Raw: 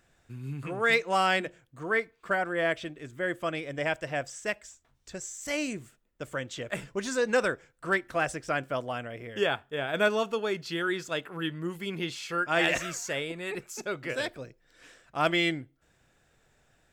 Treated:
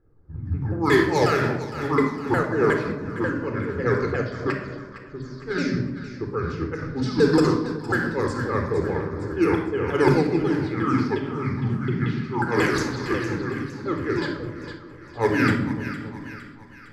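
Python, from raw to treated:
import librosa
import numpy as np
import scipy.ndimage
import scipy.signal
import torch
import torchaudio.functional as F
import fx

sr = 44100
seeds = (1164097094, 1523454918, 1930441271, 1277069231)

y = fx.pitch_ramps(x, sr, semitones=-9.5, every_ms=180)
y = fx.env_lowpass(y, sr, base_hz=700.0, full_db=-23.5)
y = fx.curve_eq(y, sr, hz=(430.0, 670.0, 1600.0, 3000.0, 4700.0, 6700.0, 12000.0), db=(0, -8, -2, -10, 5, -1, 8))
y = fx.echo_split(y, sr, split_hz=840.0, low_ms=278, high_ms=459, feedback_pct=52, wet_db=-11.5)
y = fx.room_shoebox(y, sr, seeds[0], volume_m3=3400.0, walls='furnished', distance_m=4.0)
y = fx.am_noise(y, sr, seeds[1], hz=5.7, depth_pct=60)
y = y * 10.0 ** (8.0 / 20.0)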